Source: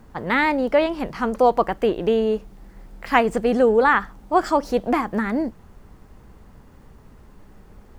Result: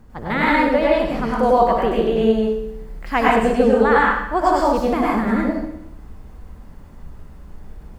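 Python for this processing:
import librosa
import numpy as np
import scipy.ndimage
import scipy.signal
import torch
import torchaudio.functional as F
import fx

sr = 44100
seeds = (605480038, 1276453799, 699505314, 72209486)

y = fx.low_shelf(x, sr, hz=170.0, db=7.5)
y = fx.echo_feedback(y, sr, ms=64, feedback_pct=60, wet_db=-13)
y = fx.rev_plate(y, sr, seeds[0], rt60_s=0.63, hf_ratio=0.95, predelay_ms=85, drr_db=-5.0)
y = F.gain(torch.from_numpy(y), -4.0).numpy()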